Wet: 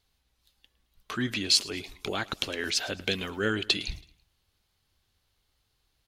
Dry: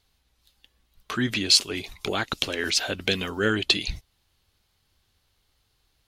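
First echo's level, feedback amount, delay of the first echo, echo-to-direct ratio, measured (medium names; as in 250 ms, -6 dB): -21.0 dB, 43%, 109 ms, -20.0 dB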